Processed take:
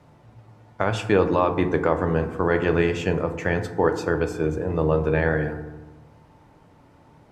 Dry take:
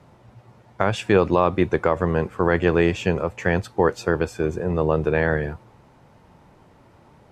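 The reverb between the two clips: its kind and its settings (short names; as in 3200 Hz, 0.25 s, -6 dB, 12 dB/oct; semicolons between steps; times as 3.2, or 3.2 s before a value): FDN reverb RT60 1.1 s, low-frequency decay 1.4×, high-frequency decay 0.35×, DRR 6.5 dB; gain -2.5 dB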